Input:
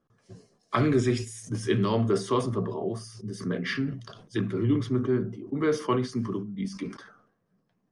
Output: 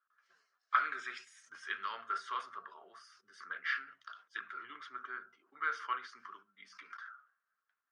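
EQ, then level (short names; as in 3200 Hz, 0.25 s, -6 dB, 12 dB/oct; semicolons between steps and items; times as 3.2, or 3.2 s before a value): ladder band-pass 1500 Hz, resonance 75%; high shelf 2300 Hz +9.5 dB; +1.5 dB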